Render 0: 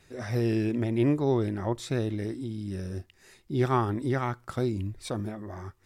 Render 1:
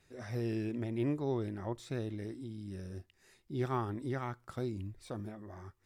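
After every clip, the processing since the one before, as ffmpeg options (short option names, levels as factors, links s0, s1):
-af "deesser=1,volume=0.355"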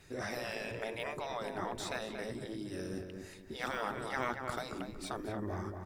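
-filter_complex "[0:a]afftfilt=real='re*lt(hypot(re,im),0.0398)':imag='im*lt(hypot(re,im),0.0398)':win_size=1024:overlap=0.75,asplit=2[s0][s1];[s1]adelay=233,lowpass=f=1900:p=1,volume=0.562,asplit=2[s2][s3];[s3]adelay=233,lowpass=f=1900:p=1,volume=0.33,asplit=2[s4][s5];[s5]adelay=233,lowpass=f=1900:p=1,volume=0.33,asplit=2[s6][s7];[s7]adelay=233,lowpass=f=1900:p=1,volume=0.33[s8];[s2][s4][s6][s8]amix=inputs=4:normalize=0[s9];[s0][s9]amix=inputs=2:normalize=0,volume=2.99"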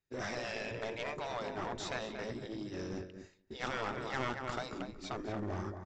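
-af "agate=range=0.0224:threshold=0.0112:ratio=3:detection=peak,aresample=16000,aeval=exprs='clip(val(0),-1,0.0112)':c=same,aresample=44100,volume=1.19"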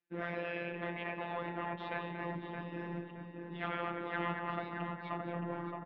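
-filter_complex "[0:a]highpass=f=190:t=q:w=0.5412,highpass=f=190:t=q:w=1.307,lowpass=f=3100:t=q:w=0.5176,lowpass=f=3100:t=q:w=0.7071,lowpass=f=3100:t=q:w=1.932,afreqshift=-56,afftfilt=real='hypot(re,im)*cos(PI*b)':imag='0':win_size=1024:overlap=0.75,asplit=2[s0][s1];[s1]adelay=620,lowpass=f=1600:p=1,volume=0.668,asplit=2[s2][s3];[s3]adelay=620,lowpass=f=1600:p=1,volume=0.42,asplit=2[s4][s5];[s5]adelay=620,lowpass=f=1600:p=1,volume=0.42,asplit=2[s6][s7];[s7]adelay=620,lowpass=f=1600:p=1,volume=0.42,asplit=2[s8][s9];[s9]adelay=620,lowpass=f=1600:p=1,volume=0.42[s10];[s0][s2][s4][s6][s8][s10]amix=inputs=6:normalize=0,volume=1.58"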